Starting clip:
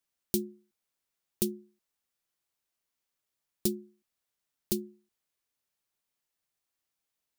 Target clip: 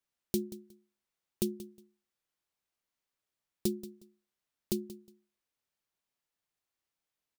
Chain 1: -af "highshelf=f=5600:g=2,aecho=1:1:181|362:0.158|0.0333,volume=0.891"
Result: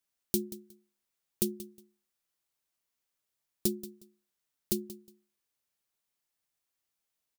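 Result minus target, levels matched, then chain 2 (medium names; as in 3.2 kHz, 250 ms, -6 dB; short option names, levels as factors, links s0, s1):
8 kHz band +3.0 dB
-af "highshelf=f=5600:g=-6.5,aecho=1:1:181|362:0.158|0.0333,volume=0.891"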